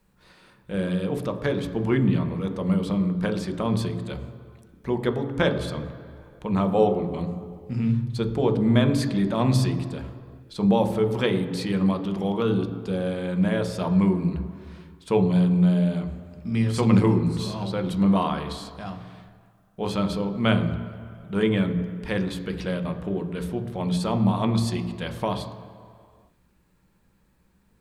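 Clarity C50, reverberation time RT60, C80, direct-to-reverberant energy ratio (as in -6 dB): 10.0 dB, 2.1 s, 11.5 dB, 6.0 dB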